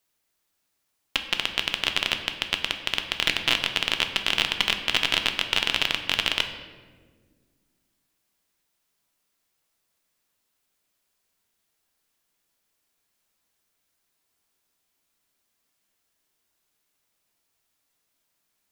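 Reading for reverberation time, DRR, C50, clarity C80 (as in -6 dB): 1.6 s, 5.5 dB, 8.5 dB, 10.0 dB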